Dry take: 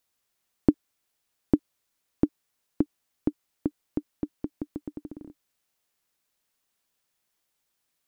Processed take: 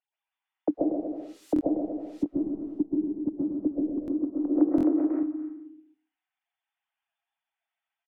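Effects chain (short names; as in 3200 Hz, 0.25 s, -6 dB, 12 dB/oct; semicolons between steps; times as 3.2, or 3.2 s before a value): sine-wave speech; limiter -16.5 dBFS, peak gain reduction 9 dB; treble ducked by the level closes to 320 Hz, closed at -27.5 dBFS; 0.69–2.25 added noise blue -57 dBFS; bouncing-ball echo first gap 0.13 s, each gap 0.8×, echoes 5; reverb RT60 0.40 s, pre-delay 95 ms, DRR -2 dB; treble ducked by the level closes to 820 Hz, closed at -29.5 dBFS; 4.49–5.23 bell 450 Hz +12 dB 1.4 oct; stuck buffer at 1.54/4.01/4.76, samples 1024, times 2; gain +2 dB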